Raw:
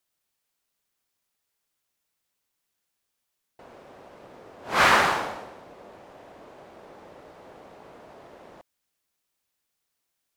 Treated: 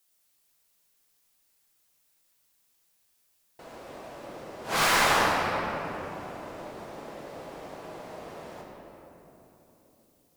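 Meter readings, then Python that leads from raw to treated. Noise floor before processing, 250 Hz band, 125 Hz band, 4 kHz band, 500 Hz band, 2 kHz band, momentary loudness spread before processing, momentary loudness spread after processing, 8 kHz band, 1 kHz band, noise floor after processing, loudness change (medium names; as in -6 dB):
-80 dBFS, +2.0 dB, +2.5 dB, +1.0 dB, +0.5 dB, -2.5 dB, 18 LU, 23 LU, +4.5 dB, -1.5 dB, -70 dBFS, -7.5 dB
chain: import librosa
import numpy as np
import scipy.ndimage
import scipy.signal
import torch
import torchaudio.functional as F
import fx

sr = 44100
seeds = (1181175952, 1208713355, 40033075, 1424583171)

y = fx.high_shelf(x, sr, hz=4700.0, db=10.5)
y = np.clip(10.0 ** (24.0 / 20.0) * y, -1.0, 1.0) / 10.0 ** (24.0 / 20.0)
y = fx.room_shoebox(y, sr, seeds[0], volume_m3=220.0, walls='hard', distance_m=0.67)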